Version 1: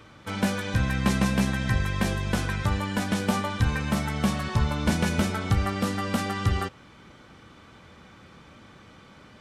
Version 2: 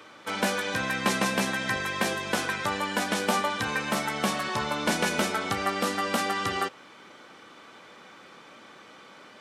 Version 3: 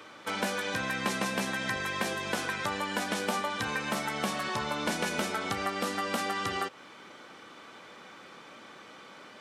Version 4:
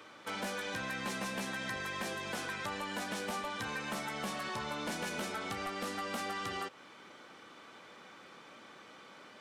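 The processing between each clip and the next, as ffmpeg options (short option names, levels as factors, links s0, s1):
-af "highpass=350,volume=1.5"
-af "acompressor=threshold=0.0282:ratio=2"
-af "asoftclip=type=tanh:threshold=0.0473,volume=0.596"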